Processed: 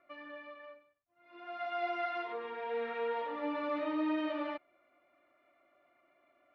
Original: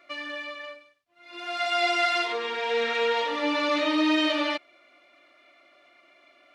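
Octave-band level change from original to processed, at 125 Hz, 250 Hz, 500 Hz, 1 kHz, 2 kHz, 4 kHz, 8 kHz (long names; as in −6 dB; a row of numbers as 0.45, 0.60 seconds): can't be measured, −9.5 dB, −9.0 dB, −9.5 dB, −15.5 dB, −22.5 dB, below −30 dB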